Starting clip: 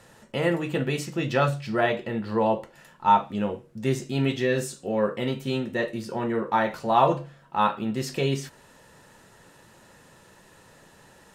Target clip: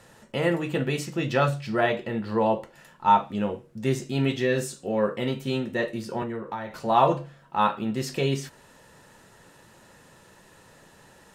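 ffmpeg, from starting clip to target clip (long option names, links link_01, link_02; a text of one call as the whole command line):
ffmpeg -i in.wav -filter_complex "[0:a]asettb=1/sr,asplit=3[link_01][link_02][link_03];[link_01]atrim=end=6.224[link_04];[link_02]atrim=start=6.22:end=6.75,asetpts=PTS-STARTPTS,afade=type=in:duration=0.004:curve=qsin,afade=type=out:start_time=0.526:duration=0.004:curve=qsin,acrossover=split=120[link_05][link_06];[link_06]acompressor=threshold=-30dB:ratio=10[link_07];[link_05][link_07]amix=inputs=2:normalize=0[link_08];[link_03]atrim=start=6.746[link_09];[link_04][link_08]acrossfade=duration=0.004:curve1=hsin:curve2=qsin[link_10];[link_10][link_09]acrossfade=duration=0.004:curve1=qsin:curve2=hsin" out.wav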